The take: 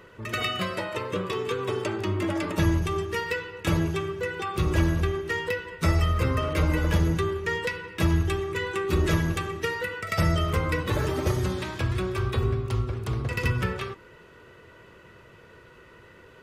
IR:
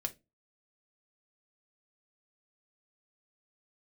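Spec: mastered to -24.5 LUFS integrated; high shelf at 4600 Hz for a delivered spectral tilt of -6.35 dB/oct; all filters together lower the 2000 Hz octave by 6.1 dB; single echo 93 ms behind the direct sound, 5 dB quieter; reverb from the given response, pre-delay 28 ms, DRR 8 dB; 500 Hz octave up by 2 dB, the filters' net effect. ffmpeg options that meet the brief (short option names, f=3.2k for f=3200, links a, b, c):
-filter_complex "[0:a]equalizer=f=500:t=o:g=3,equalizer=f=2k:t=o:g=-7,highshelf=f=4.6k:g=-4,aecho=1:1:93:0.562,asplit=2[a][b];[1:a]atrim=start_sample=2205,adelay=28[c];[b][c]afir=irnorm=-1:irlink=0,volume=-8.5dB[d];[a][d]amix=inputs=2:normalize=0,volume=1.5dB"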